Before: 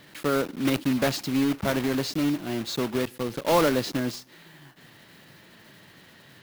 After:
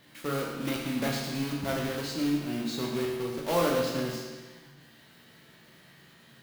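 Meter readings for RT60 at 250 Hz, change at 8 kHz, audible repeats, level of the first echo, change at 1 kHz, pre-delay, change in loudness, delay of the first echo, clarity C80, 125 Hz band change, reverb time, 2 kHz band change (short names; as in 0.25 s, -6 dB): 1.4 s, -3.5 dB, none, none, -5.0 dB, 13 ms, -4.5 dB, none, 3.5 dB, -3.0 dB, 1.4 s, -4.5 dB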